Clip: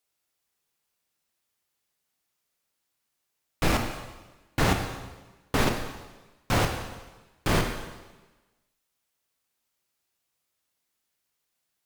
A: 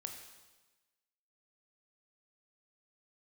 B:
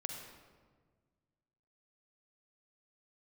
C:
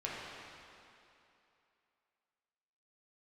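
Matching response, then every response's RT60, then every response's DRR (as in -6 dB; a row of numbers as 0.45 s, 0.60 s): A; 1.2 s, 1.6 s, 2.8 s; 3.5 dB, 2.5 dB, -6.5 dB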